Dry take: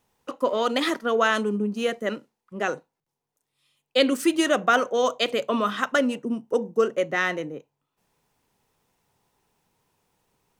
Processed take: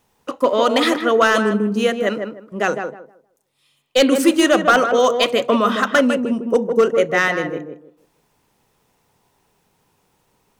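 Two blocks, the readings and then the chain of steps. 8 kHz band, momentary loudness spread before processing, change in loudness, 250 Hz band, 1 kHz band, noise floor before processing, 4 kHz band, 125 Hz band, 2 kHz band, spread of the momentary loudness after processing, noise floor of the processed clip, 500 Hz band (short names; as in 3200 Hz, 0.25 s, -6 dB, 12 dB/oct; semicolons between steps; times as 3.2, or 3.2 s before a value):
+7.5 dB, 11 LU, +7.0 dB, +7.5 dB, +7.0 dB, -83 dBFS, +6.0 dB, +7.5 dB, +7.0 dB, 12 LU, -65 dBFS, +8.0 dB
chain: hard clip -13.5 dBFS, distortion -18 dB; tape echo 0.155 s, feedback 26%, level -4 dB, low-pass 1300 Hz; gain +7 dB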